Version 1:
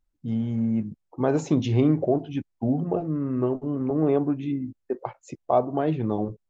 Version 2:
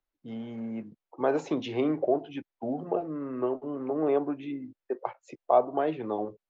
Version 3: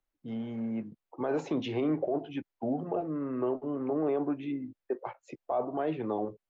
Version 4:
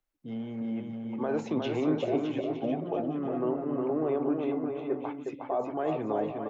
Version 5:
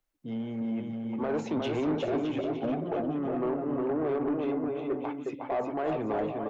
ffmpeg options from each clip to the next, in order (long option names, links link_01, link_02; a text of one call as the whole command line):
ffmpeg -i in.wav -filter_complex "[0:a]acrossover=split=340 4300:gain=0.158 1 0.2[link_01][link_02][link_03];[link_01][link_02][link_03]amix=inputs=3:normalize=0,acrossover=split=120|2000[link_04][link_05][link_06];[link_04]acompressor=threshold=-60dB:ratio=6[link_07];[link_07][link_05][link_06]amix=inputs=3:normalize=0" out.wav
ffmpeg -i in.wav -af "bass=frequency=250:gain=3,treble=frequency=4000:gain=-4,alimiter=limit=-22dB:level=0:latency=1:release=14" out.wav
ffmpeg -i in.wav -af "aecho=1:1:360|612|788.4|911.9|998.3:0.631|0.398|0.251|0.158|0.1" out.wav
ffmpeg -i in.wav -af "asoftclip=type=tanh:threshold=-26dB,volume=2.5dB" out.wav